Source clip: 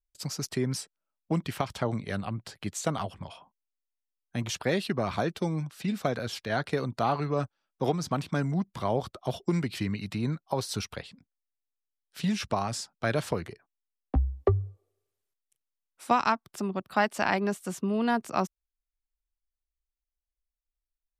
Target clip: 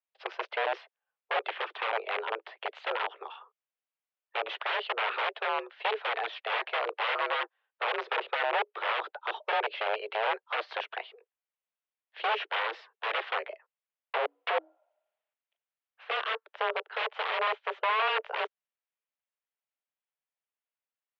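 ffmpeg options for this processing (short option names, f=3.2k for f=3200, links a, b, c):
-af "aeval=exprs='(mod(17.8*val(0)+1,2)-1)/17.8':c=same,highpass=f=230:t=q:w=0.5412,highpass=f=230:t=q:w=1.307,lowpass=f=3k:t=q:w=0.5176,lowpass=f=3k:t=q:w=0.7071,lowpass=f=3k:t=q:w=1.932,afreqshift=220,volume=3.5dB"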